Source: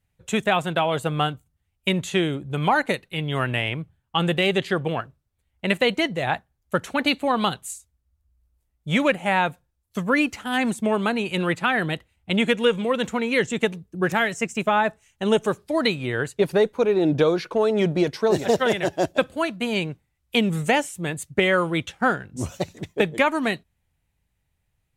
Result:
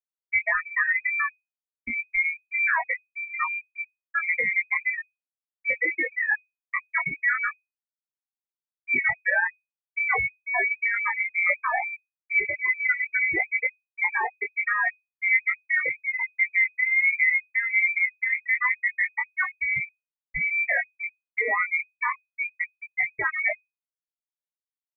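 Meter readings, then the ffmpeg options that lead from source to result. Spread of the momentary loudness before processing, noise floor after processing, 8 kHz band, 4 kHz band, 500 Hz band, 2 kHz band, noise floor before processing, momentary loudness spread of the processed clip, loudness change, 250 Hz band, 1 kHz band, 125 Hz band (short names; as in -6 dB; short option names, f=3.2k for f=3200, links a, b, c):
8 LU, under -85 dBFS, under -40 dB, under -40 dB, -18.0 dB, +5.0 dB, -74 dBFS, 9 LU, -1.0 dB, -25.0 dB, -7.0 dB, under -20 dB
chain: -filter_complex "[0:a]afftfilt=real='re*gte(hypot(re,im),0.398)':imag='im*gte(hypot(re,im),0.398)':win_size=1024:overlap=0.75,highpass=f=320:p=1,asplit=2[a][b];[b]acompressor=threshold=-33dB:ratio=5,volume=-0.5dB[c];[a][c]amix=inputs=2:normalize=0,alimiter=limit=-18dB:level=0:latency=1:release=194,acontrast=44,flanger=delay=17:depth=2.8:speed=0.6,aeval=exprs='0.237*(cos(1*acos(clip(val(0)/0.237,-1,1)))-cos(1*PI/2))+0.00168*(cos(8*acos(clip(val(0)/0.237,-1,1)))-cos(8*PI/2))':c=same,lowpass=f=2.1k:t=q:w=0.5098,lowpass=f=2.1k:t=q:w=0.6013,lowpass=f=2.1k:t=q:w=0.9,lowpass=f=2.1k:t=q:w=2.563,afreqshift=-2500"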